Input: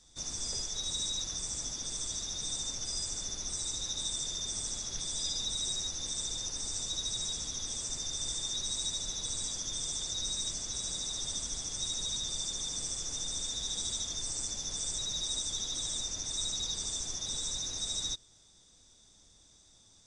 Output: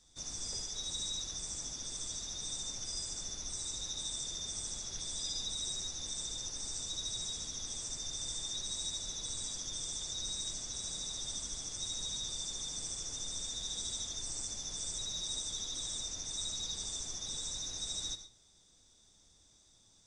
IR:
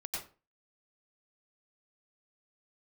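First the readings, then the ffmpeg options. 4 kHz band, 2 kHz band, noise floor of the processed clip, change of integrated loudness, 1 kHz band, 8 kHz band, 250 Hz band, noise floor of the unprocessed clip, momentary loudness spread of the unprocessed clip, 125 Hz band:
-4.0 dB, -4.0 dB, -65 dBFS, -4.0 dB, -4.0 dB, -4.0 dB, -4.0 dB, -61 dBFS, 2 LU, -4.0 dB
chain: -filter_complex "[0:a]asplit=2[a][b];[1:a]atrim=start_sample=2205[c];[b][c]afir=irnorm=-1:irlink=0,volume=-8dB[d];[a][d]amix=inputs=2:normalize=0,volume=-6dB"

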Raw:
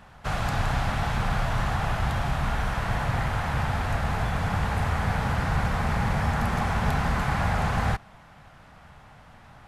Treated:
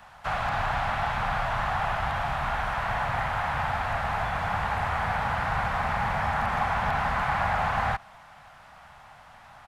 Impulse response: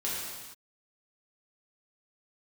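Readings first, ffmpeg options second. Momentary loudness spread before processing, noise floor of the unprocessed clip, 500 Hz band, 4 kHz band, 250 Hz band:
2 LU, -51 dBFS, 0.0 dB, -1.5 dB, -8.5 dB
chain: -filter_complex "[0:a]aresample=32000,aresample=44100,lowshelf=f=540:t=q:w=1.5:g=-9,acrossover=split=400|1600|2400[a][b][c][d];[a]acrusher=bits=4:mode=log:mix=0:aa=0.000001[e];[e][b][c][d]amix=inputs=4:normalize=0,acrossover=split=3500[f][g];[g]acompressor=threshold=-55dB:ratio=4:attack=1:release=60[h];[f][h]amix=inputs=2:normalize=0,volume=1.5dB"

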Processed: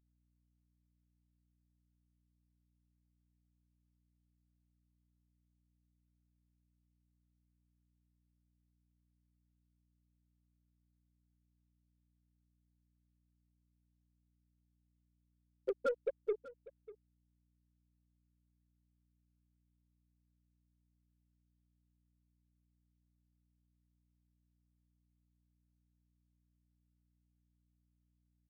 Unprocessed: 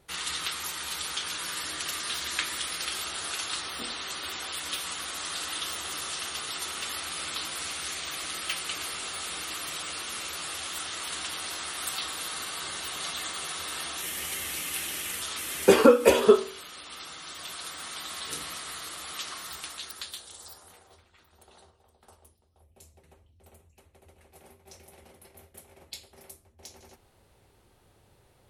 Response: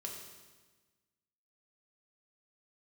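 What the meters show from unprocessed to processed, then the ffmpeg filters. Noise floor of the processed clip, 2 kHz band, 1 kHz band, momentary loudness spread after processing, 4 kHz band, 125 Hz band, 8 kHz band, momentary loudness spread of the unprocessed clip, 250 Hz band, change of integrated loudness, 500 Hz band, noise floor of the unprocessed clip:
-78 dBFS, -29.0 dB, -23.5 dB, 20 LU, under -40 dB, under -25 dB, under -40 dB, 11 LU, -27.5 dB, -9.5 dB, -18.5 dB, -63 dBFS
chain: -filter_complex "[0:a]highpass=f=1.2k:p=1,afftfilt=real='re*gte(hypot(re,im),0.447)':imag='im*gte(hypot(re,im),0.447)':win_size=1024:overlap=0.75,highshelf=f=9.9k:g=10.5,acompressor=threshold=-29dB:ratio=2.5,aeval=exprs='val(0)+0.000178*(sin(2*PI*60*n/s)+sin(2*PI*2*60*n/s)/2+sin(2*PI*3*60*n/s)/3+sin(2*PI*4*60*n/s)/4+sin(2*PI*5*60*n/s)/5)':c=same,aexciter=amount=7.3:drive=6.7:freq=2k,aeval=exprs='0.0841*(cos(1*acos(clip(val(0)/0.0841,-1,1)))-cos(1*PI/2))+0.00531*(cos(5*acos(clip(val(0)/0.0841,-1,1)))-cos(5*PI/2))+0.00133*(cos(8*acos(clip(val(0)/0.0841,-1,1)))-cos(8*PI/2))':c=same,asplit=2[a][b];[b]aecho=0:1:594:0.112[c];[a][c]amix=inputs=2:normalize=0,volume=-3.5dB"

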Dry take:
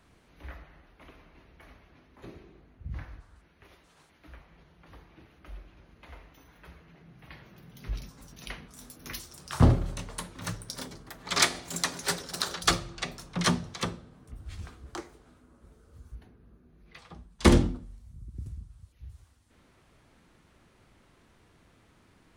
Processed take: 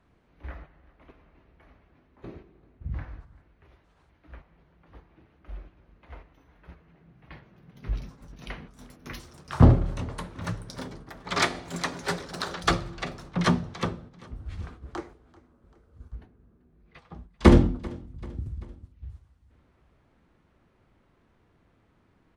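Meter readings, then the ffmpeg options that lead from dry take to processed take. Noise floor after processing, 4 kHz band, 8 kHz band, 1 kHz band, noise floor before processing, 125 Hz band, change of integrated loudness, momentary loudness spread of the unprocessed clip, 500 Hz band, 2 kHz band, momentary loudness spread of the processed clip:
-65 dBFS, -4.0 dB, -8.0 dB, +3.0 dB, -63 dBFS, +4.5 dB, +3.0 dB, 24 LU, +4.0 dB, +1.0 dB, 27 LU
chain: -af "agate=range=-7dB:threshold=-49dB:ratio=16:detection=peak,lowpass=f=1.6k:p=1,aecho=1:1:389|778|1167:0.0794|0.0397|0.0199,volume=4.5dB"

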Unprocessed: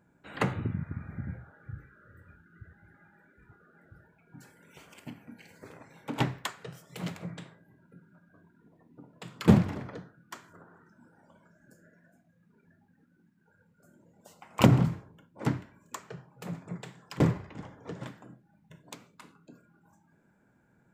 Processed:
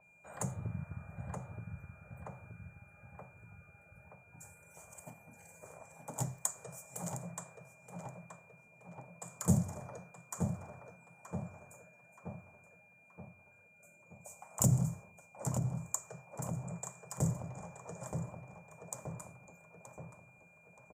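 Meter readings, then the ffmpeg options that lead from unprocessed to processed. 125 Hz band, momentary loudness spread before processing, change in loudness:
-5.5 dB, 25 LU, -9.0 dB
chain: -filter_complex "[0:a]asplit=2[a][b];[b]adelay=925,lowpass=f=3k:p=1,volume=-6.5dB,asplit=2[c][d];[d]adelay=925,lowpass=f=3k:p=1,volume=0.5,asplit=2[e][f];[f]adelay=925,lowpass=f=3k:p=1,volume=0.5,asplit=2[g][h];[h]adelay=925,lowpass=f=3k:p=1,volume=0.5,asplit=2[i][j];[j]adelay=925,lowpass=f=3k:p=1,volume=0.5,asplit=2[k][l];[l]adelay=925,lowpass=f=3k:p=1,volume=0.5[m];[a][c][e][g][i][k][m]amix=inputs=7:normalize=0,aeval=exprs='val(0)+0.00891*sin(2*PI*2400*n/s)':c=same,crystalizer=i=7:c=0,acompressor=mode=upward:threshold=-40dB:ratio=2.5,firequalizer=gain_entry='entry(170,0);entry(270,-13);entry(600,8);entry(2600,-27);entry(4100,-27);entry(6900,-2);entry(13000,-14)':delay=0.05:min_phase=1,acrossover=split=350|3000[n][o][p];[o]acompressor=threshold=-38dB:ratio=6[q];[n][q][p]amix=inputs=3:normalize=0,adynamicequalizer=threshold=0.00282:dfrequency=2900:dqfactor=0.7:tfrequency=2900:tqfactor=0.7:attack=5:release=100:ratio=0.375:range=2:mode=boostabove:tftype=highshelf,volume=-6.5dB"

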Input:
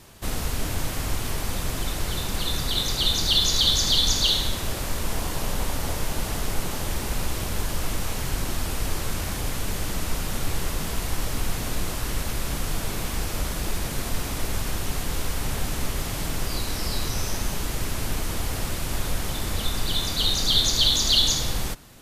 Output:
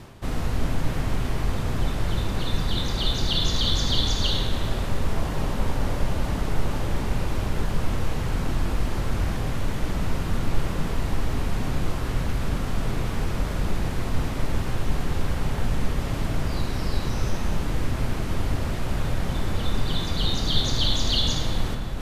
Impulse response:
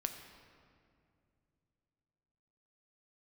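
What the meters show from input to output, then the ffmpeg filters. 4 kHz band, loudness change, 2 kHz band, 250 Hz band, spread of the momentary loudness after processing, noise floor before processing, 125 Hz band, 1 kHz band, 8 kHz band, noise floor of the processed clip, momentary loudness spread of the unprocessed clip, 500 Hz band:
-5.0 dB, -1.5 dB, -1.5 dB, +4.0 dB, 6 LU, -31 dBFS, +4.5 dB, +0.5 dB, -10.5 dB, -28 dBFS, 11 LU, +2.0 dB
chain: -filter_complex "[0:a]lowpass=f=2k:p=1,equalizer=f=140:t=o:w=2:g=3,areverse,acompressor=mode=upward:threshold=-25dB:ratio=2.5,areverse[a];[1:a]atrim=start_sample=2205,asetrate=34398,aresample=44100[b];[a][b]afir=irnorm=-1:irlink=0"

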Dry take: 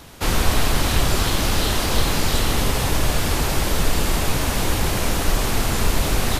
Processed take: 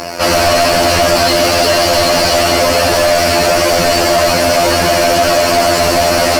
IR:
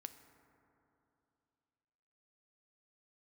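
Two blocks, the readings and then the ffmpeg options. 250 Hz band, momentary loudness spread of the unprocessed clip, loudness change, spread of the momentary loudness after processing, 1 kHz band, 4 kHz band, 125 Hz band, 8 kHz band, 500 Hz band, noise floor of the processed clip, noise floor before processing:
+8.0 dB, 2 LU, +11.0 dB, 1 LU, +13.5 dB, +11.5 dB, +0.5 dB, +8.5 dB, +17.5 dB, -13 dBFS, -23 dBFS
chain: -filter_complex "[0:a]superequalizer=6b=1.58:8b=2.82:13b=0.355:14b=1.78,afftfilt=real='hypot(re,im)*cos(PI*b)':imag='0':win_size=2048:overlap=0.75,asplit=2[a][b];[b]highpass=f=720:p=1,volume=35dB,asoftclip=type=tanh:threshold=0dB[c];[a][c]amix=inputs=2:normalize=0,lowpass=f=4.8k:p=1,volume=-6dB,volume=-1dB"

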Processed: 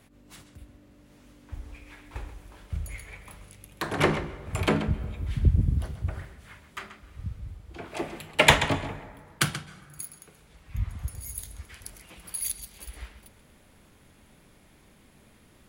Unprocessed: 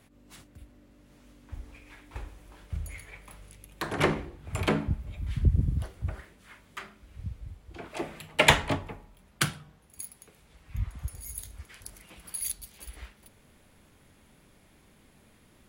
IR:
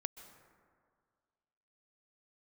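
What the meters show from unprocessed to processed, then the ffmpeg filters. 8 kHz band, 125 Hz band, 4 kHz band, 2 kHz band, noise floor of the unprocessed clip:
+2.0 dB, +2.5 dB, +2.5 dB, +2.5 dB, -61 dBFS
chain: -filter_complex "[0:a]asplit=2[a][b];[1:a]atrim=start_sample=2205,lowpass=9k,adelay=132[c];[b][c]afir=irnorm=-1:irlink=0,volume=-9dB[d];[a][d]amix=inputs=2:normalize=0,volume=2dB"

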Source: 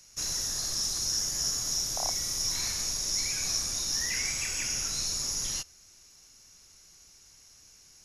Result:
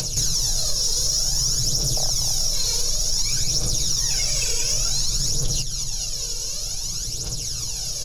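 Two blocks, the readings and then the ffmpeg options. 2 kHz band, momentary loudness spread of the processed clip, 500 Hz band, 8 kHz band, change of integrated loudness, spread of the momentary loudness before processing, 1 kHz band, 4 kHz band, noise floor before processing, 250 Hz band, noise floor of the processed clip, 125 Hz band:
0.0 dB, 6 LU, +10.5 dB, +8.0 dB, +7.0 dB, 2 LU, +3.0 dB, +9.0 dB, -57 dBFS, +10.5 dB, -28 dBFS, +16.5 dB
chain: -filter_complex "[0:a]lowshelf=f=93:g=7.5,bandreject=f=2k:w=6.6,asplit=2[a][b];[b]aecho=0:1:216|432|648|864|1080:0.188|0.0979|0.0509|0.0265|0.0138[c];[a][c]amix=inputs=2:normalize=0,aphaser=in_gain=1:out_gain=1:delay=2.2:decay=0.61:speed=0.55:type=triangular,equalizer=f=125:t=o:w=1:g=7,equalizer=f=250:t=o:w=1:g=-5,equalizer=f=500:t=o:w=1:g=8,equalizer=f=1k:t=o:w=1:g=-4,equalizer=f=2k:t=o:w=1:g=-10,equalizer=f=4k:t=o:w=1:g=6,asplit=2[d][e];[e]alimiter=limit=-21dB:level=0:latency=1,volume=1dB[f];[d][f]amix=inputs=2:normalize=0,acompressor=mode=upward:threshold=-28dB:ratio=2.5,aecho=1:1:6.5:0.57,acompressor=threshold=-30dB:ratio=3,asoftclip=type=tanh:threshold=-19.5dB,volume=9dB"

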